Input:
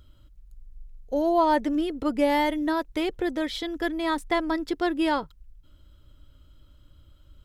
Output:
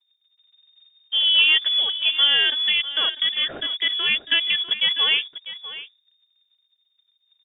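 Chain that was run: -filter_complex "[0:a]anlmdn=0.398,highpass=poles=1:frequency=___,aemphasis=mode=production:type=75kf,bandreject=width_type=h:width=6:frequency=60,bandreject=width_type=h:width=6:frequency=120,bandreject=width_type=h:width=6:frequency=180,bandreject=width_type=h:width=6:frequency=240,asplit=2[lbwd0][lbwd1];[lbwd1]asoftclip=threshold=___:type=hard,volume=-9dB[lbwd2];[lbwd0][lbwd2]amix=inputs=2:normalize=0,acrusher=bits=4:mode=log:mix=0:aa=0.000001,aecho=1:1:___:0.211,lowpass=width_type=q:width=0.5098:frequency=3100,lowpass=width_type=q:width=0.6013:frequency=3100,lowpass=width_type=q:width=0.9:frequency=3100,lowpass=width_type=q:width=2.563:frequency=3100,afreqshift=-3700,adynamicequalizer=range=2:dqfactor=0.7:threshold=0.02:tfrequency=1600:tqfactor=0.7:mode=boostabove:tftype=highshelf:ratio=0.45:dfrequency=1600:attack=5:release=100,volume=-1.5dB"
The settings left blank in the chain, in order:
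160, -20.5dB, 647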